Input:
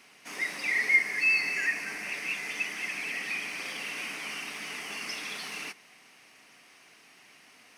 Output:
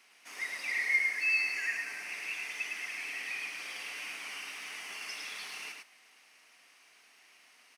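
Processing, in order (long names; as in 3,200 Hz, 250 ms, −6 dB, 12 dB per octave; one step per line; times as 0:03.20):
high-pass filter 760 Hz 6 dB per octave
on a send: single-tap delay 106 ms −3.5 dB
on the sum: level −5.5 dB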